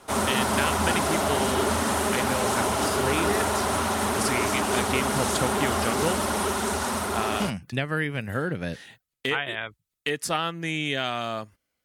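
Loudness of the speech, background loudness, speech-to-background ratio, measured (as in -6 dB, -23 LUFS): -30.0 LUFS, -25.0 LUFS, -5.0 dB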